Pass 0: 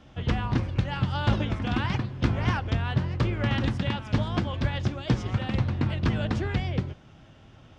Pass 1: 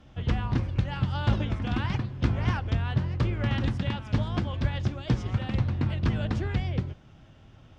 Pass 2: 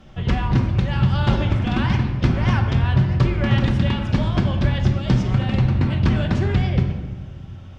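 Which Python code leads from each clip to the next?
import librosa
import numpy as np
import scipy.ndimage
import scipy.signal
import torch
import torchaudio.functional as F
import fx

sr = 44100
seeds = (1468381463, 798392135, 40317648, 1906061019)

y1 = fx.low_shelf(x, sr, hz=120.0, db=6.0)
y1 = y1 * librosa.db_to_amplitude(-3.5)
y2 = fx.room_shoebox(y1, sr, seeds[0], volume_m3=1100.0, walls='mixed', distance_m=1.1)
y2 = y2 * librosa.db_to_amplitude(6.5)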